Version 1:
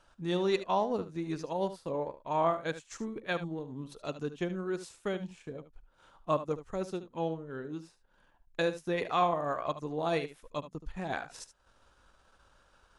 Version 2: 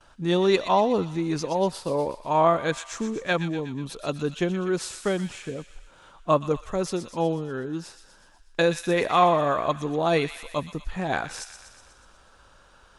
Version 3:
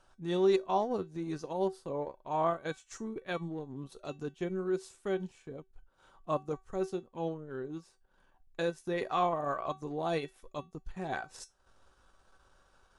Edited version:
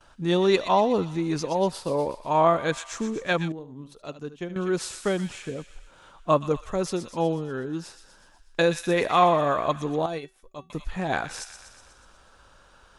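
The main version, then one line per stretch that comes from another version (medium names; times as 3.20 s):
2
3.52–4.56 s: from 1
10.06–10.70 s: from 3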